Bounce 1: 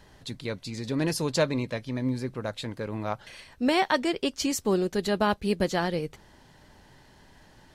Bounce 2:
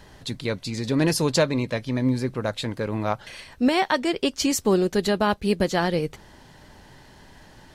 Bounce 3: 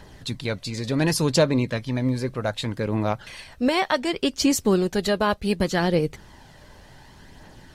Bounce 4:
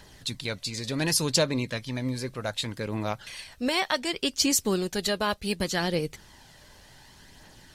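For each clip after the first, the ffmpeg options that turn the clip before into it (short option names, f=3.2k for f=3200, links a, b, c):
-af "alimiter=limit=-16dB:level=0:latency=1:release=430,volume=6dB"
-af "aphaser=in_gain=1:out_gain=1:delay=2:decay=0.33:speed=0.67:type=triangular"
-af "highshelf=f=2.2k:g=10.5,volume=-7dB"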